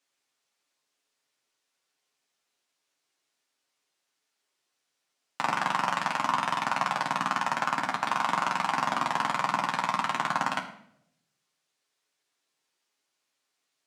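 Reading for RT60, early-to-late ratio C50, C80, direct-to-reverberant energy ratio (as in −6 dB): 0.75 s, 10.0 dB, 12.0 dB, 0.0 dB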